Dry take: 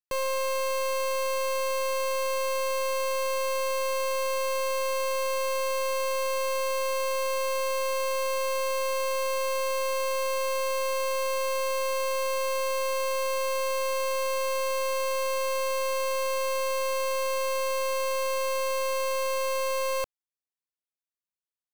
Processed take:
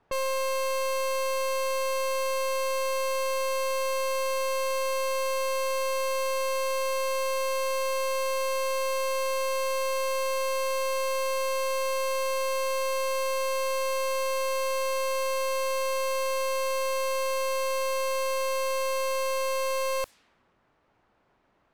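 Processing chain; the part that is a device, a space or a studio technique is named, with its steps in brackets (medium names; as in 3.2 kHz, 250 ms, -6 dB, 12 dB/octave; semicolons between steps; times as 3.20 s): cassette deck with a dynamic noise filter (white noise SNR 29 dB; level-controlled noise filter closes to 1 kHz, open at -29 dBFS)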